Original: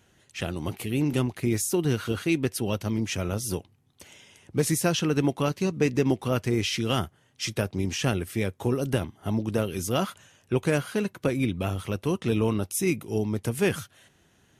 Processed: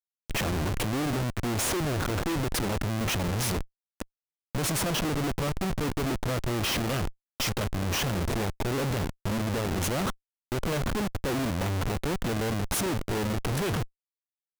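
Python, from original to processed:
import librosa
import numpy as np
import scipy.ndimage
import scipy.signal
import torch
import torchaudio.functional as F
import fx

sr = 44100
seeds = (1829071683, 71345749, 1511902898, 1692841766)

y = fx.rider(x, sr, range_db=10, speed_s=0.5)
y = fx.dynamic_eq(y, sr, hz=2200.0, q=2.2, threshold_db=-43.0, ratio=4.0, max_db=-3)
y = fx.schmitt(y, sr, flips_db=-33.5)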